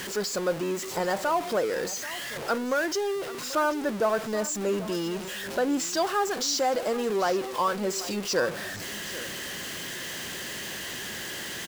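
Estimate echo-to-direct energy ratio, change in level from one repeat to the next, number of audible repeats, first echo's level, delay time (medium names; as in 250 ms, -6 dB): -16.0 dB, no regular repeats, 1, -16.0 dB, 786 ms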